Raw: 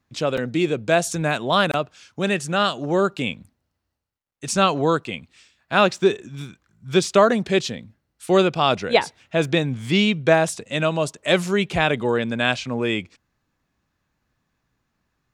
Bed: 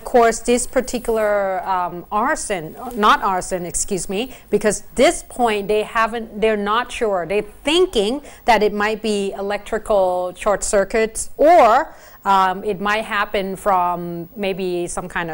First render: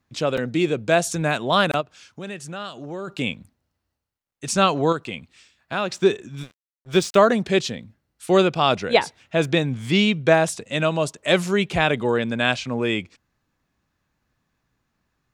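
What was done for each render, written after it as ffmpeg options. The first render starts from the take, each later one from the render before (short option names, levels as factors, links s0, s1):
-filter_complex "[0:a]asplit=3[s0][s1][s2];[s0]afade=t=out:st=1.8:d=0.02[s3];[s1]acompressor=threshold=0.0126:ratio=2:attack=3.2:release=140:knee=1:detection=peak,afade=t=in:st=1.8:d=0.02,afade=t=out:st=3.07:d=0.02[s4];[s2]afade=t=in:st=3.07:d=0.02[s5];[s3][s4][s5]amix=inputs=3:normalize=0,asettb=1/sr,asplit=3[s6][s7][s8];[s6]atrim=end=4.924[s9];[s7]atrim=start=4.92:end=5.92,asetpts=PTS-STARTPTS,afade=t=in:d=0.004:c=qsin,afade=t=out:st=0.996:d=0.004:c=qsin,acompressor=threshold=0.0562:ratio=2:attack=3.2:release=140:knee=1:detection=peak[s10];[s8]atrim=start=5.916[s11];[s9][s10]acrossfade=d=0.004:c1=hsin:c2=qsin[s12];[s12][s11]acrossfade=d=0.004:c1=qsin:c2=hsin,asettb=1/sr,asplit=3[s13][s14][s15];[s13]atrim=end=6.434[s16];[s14]atrim=start=6.43:end=7.18,asetpts=PTS-STARTPTS,afade=t=in:d=0.004:c=qsin,afade=t=out:st=0.746:d=0.004:c=qsin,aeval=exprs='sgn(val(0))*max(abs(val(0))-0.0133,0)':c=same[s17];[s15]atrim=start=7.176[s18];[s16][s17]acrossfade=d=0.004:c1=hsin:c2=qsin[s19];[s19][s18]acrossfade=d=0.004:c1=qsin:c2=hsin"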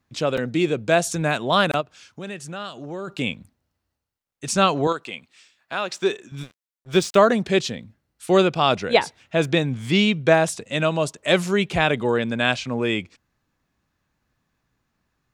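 -filter_complex "[0:a]asettb=1/sr,asplit=3[s0][s1][s2];[s0]atrim=end=4.874[s3];[s1]atrim=start=4.87:end=6.32,asetpts=PTS-STARTPTS,afade=t=in:d=0.004:c=qsin,afade=t=out:st=1.446:d=0.004:c=qsin,highpass=f=490:p=1[s4];[s2]atrim=start=6.316[s5];[s3][s4]acrossfade=d=0.004:c1=hsin:c2=qsin[s6];[s6][s5]acrossfade=d=0.004:c1=qsin:c2=hsin"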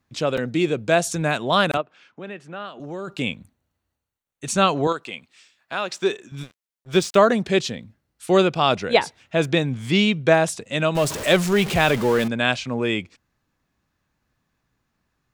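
-filter_complex "[0:a]asettb=1/sr,asplit=3[s0][s1][s2];[s0]atrim=end=1.774[s3];[s1]atrim=start=1.77:end=2.8,asetpts=PTS-STARTPTS,afade=t=in:d=0.004:c=qsin,afade=t=out:st=1.026:d=0.004:c=qsin,acrossover=split=170 3200:gain=0.126 1 0.0891[s4][s5][s6];[s4][s5][s6]amix=inputs=3:normalize=0[s7];[s2]atrim=start=2.796[s8];[s3][s7]acrossfade=d=0.004:c1=hsin:c2=qsin[s9];[s9][s8]acrossfade=d=0.004:c1=qsin:c2=hsin,asettb=1/sr,asplit=3[s10][s11][s12];[s10]atrim=end=3.314[s13];[s11]atrim=start=3.31:end=4.79,asetpts=PTS-STARTPTS,afade=t=in:d=0.004:c=qsin,afade=t=out:st=1.476:d=0.004:c=qsin,bandreject=f=5100:w=5.5[s14];[s12]atrim=start=4.786[s15];[s13][s14]acrossfade=d=0.004:c1=hsin:c2=qsin[s16];[s16][s15]acrossfade=d=0.004:c1=qsin:c2=hsin,asettb=1/sr,asplit=3[s17][s18][s19];[s17]atrim=end=10.954[s20];[s18]atrim=start=10.95:end=12.28,asetpts=PTS-STARTPTS,afade=t=in:d=0.004:c=qsin,afade=t=out:st=1.326:d=0.004:c=qsin,aeval=exprs='val(0)+0.5*0.0596*sgn(val(0))':c=same[s21];[s19]atrim=start=12.276[s22];[s20][s21]acrossfade=d=0.004:c1=hsin:c2=qsin[s23];[s23][s22]acrossfade=d=0.004:c1=qsin:c2=hsin"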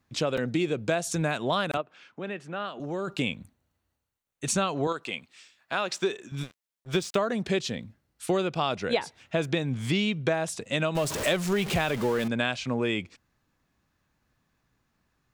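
-af "acompressor=threshold=0.0708:ratio=6"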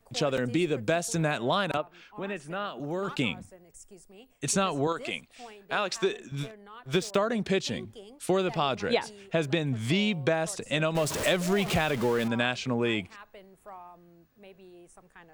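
-filter_complex "[1:a]volume=0.0335[s0];[0:a][s0]amix=inputs=2:normalize=0"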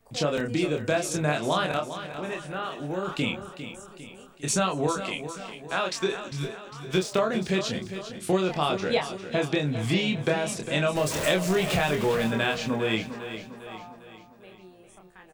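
-filter_complex "[0:a]asplit=2[s0][s1];[s1]adelay=27,volume=0.631[s2];[s0][s2]amix=inputs=2:normalize=0,aecho=1:1:402|804|1206|1608|2010:0.282|0.141|0.0705|0.0352|0.0176"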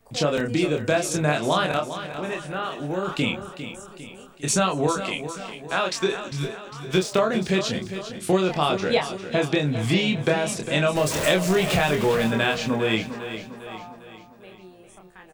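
-af "volume=1.5"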